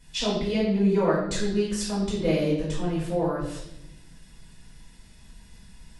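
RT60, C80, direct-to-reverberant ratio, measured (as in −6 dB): 0.85 s, 6.0 dB, −9.5 dB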